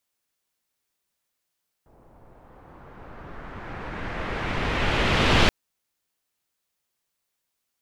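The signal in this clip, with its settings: swept filtered noise pink, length 3.63 s lowpass, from 770 Hz, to 3400 Hz, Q 1.3, exponential, gain ramp +38.5 dB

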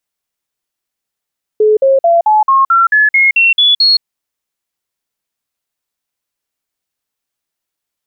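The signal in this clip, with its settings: stepped sine 428 Hz up, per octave 3, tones 11, 0.17 s, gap 0.05 s -5.5 dBFS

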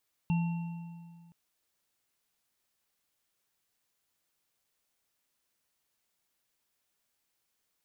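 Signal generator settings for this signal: sine partials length 1.02 s, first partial 169 Hz, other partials 877/2730 Hz, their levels -15/-17.5 dB, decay 2.00 s, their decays 1.87/1.46 s, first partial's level -24 dB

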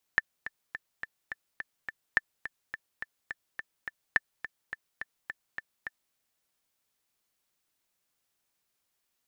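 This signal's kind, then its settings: metronome 211 bpm, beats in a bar 7, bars 3, 1770 Hz, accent 13.5 dB -9 dBFS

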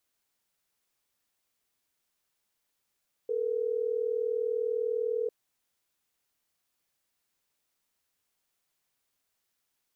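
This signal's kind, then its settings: call progress tone ringback tone, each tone -30 dBFS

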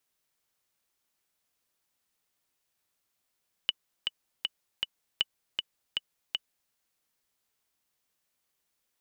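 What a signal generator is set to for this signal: metronome 158 bpm, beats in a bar 4, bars 2, 2960 Hz, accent 4 dB -11.5 dBFS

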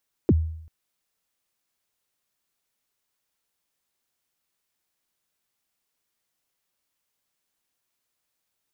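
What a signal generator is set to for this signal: kick drum length 0.39 s, from 440 Hz, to 80 Hz, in 40 ms, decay 0.70 s, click off, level -12 dB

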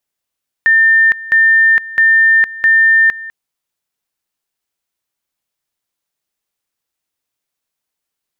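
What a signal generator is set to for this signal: two-level tone 1800 Hz -6 dBFS, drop 18.5 dB, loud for 0.46 s, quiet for 0.20 s, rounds 4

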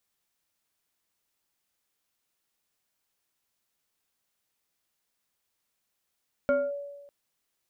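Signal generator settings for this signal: FM tone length 0.60 s, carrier 569 Hz, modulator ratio 1.46, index 0.72, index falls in 0.23 s linear, decay 1.18 s, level -19 dB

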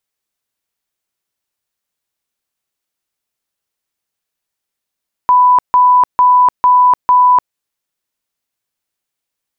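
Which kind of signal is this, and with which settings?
tone bursts 994 Hz, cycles 295, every 0.45 s, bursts 5, -5 dBFS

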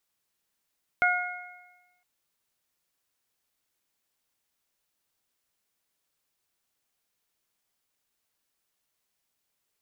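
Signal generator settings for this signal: additive tone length 1.01 s, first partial 719 Hz, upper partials 3.5/1 dB, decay 1.16 s, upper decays 0.99/1.17 s, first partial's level -24 dB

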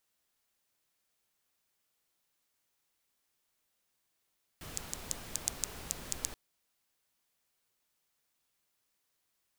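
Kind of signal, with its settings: rain from filtered ticks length 1.73 s, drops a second 5.3, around 7000 Hz, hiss -3.5 dB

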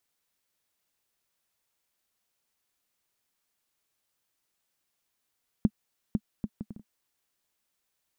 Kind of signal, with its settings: bouncing ball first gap 0.50 s, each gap 0.58, 212 Hz, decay 52 ms -10.5 dBFS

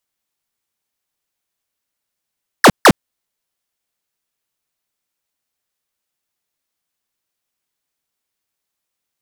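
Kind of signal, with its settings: burst of laser zaps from 2000 Hz, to 130 Hz, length 0.06 s square, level -5 dB, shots 2, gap 0.15 s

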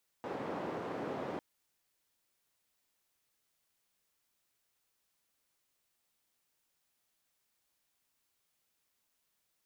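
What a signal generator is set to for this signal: noise band 210–630 Hz, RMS -39.5 dBFS 1.15 s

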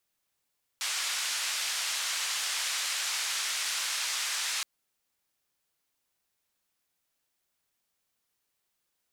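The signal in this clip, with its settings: noise band 1300–7100 Hz, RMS -32 dBFS 3.82 s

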